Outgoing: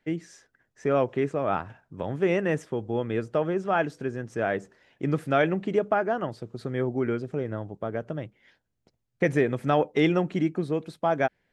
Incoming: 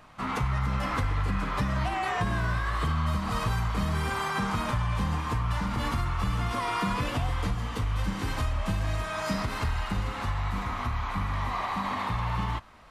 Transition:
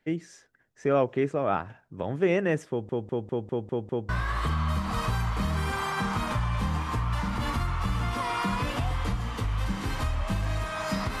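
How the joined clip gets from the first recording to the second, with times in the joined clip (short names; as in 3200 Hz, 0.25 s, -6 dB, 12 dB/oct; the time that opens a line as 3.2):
outgoing
2.69 stutter in place 0.20 s, 7 plays
4.09 switch to incoming from 2.47 s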